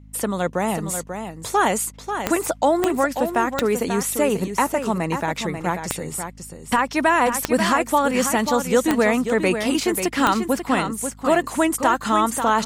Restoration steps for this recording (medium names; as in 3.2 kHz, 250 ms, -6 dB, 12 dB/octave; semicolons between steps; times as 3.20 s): de-click; de-hum 52.1 Hz, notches 5; inverse comb 539 ms -8 dB